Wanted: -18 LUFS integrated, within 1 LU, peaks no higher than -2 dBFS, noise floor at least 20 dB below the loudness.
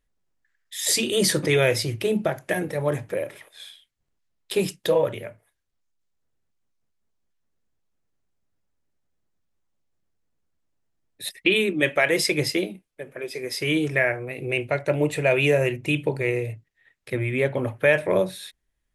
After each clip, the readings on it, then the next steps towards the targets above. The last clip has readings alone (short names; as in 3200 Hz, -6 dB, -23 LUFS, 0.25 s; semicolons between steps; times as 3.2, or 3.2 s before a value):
loudness -23.5 LUFS; peak -5.5 dBFS; loudness target -18.0 LUFS
-> gain +5.5 dB; limiter -2 dBFS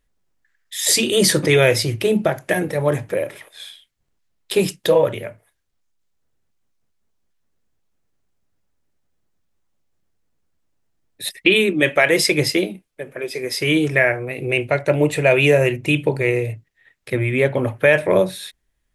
loudness -18.0 LUFS; peak -2.0 dBFS; noise floor -71 dBFS